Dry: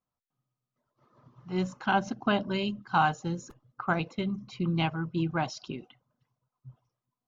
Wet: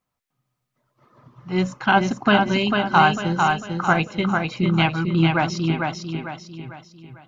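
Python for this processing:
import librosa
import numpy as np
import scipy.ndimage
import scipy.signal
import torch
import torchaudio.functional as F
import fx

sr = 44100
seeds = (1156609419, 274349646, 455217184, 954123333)

p1 = fx.peak_eq(x, sr, hz=2100.0, db=5.0, octaves=0.8)
p2 = p1 + fx.echo_feedback(p1, sr, ms=448, feedback_pct=41, wet_db=-4, dry=0)
y = p2 * librosa.db_to_amplitude(8.0)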